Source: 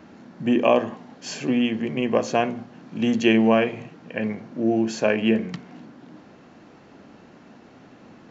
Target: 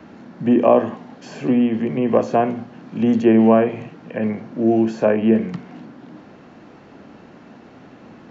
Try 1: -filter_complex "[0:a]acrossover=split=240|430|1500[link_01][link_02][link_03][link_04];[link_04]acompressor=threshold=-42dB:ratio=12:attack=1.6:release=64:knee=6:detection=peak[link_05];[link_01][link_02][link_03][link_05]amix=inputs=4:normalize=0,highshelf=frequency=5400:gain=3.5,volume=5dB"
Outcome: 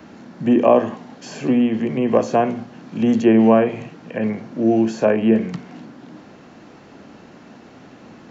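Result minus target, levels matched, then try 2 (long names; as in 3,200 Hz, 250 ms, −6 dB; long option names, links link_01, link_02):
8,000 Hz band +7.0 dB
-filter_complex "[0:a]acrossover=split=240|430|1500[link_01][link_02][link_03][link_04];[link_04]acompressor=threshold=-42dB:ratio=12:attack=1.6:release=64:knee=6:detection=peak[link_05];[link_01][link_02][link_03][link_05]amix=inputs=4:normalize=0,highshelf=frequency=5400:gain=-8.5,volume=5dB"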